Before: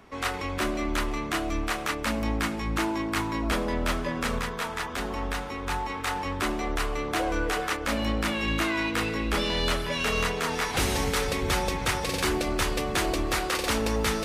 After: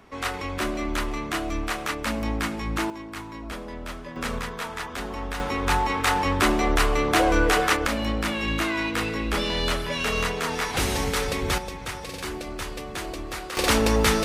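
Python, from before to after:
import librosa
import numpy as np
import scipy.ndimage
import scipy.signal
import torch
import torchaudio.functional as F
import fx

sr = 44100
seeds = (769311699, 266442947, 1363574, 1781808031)

y = fx.gain(x, sr, db=fx.steps((0.0, 0.5), (2.9, -8.5), (4.16, -1.0), (5.4, 7.5), (7.87, 1.0), (11.58, -6.5), (13.57, 6.0)))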